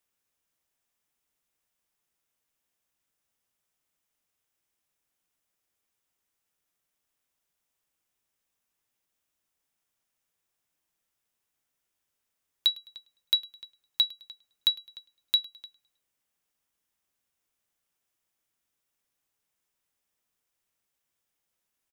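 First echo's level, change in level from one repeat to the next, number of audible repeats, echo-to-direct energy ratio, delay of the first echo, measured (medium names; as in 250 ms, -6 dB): -22.0 dB, -7.5 dB, 2, -21.0 dB, 105 ms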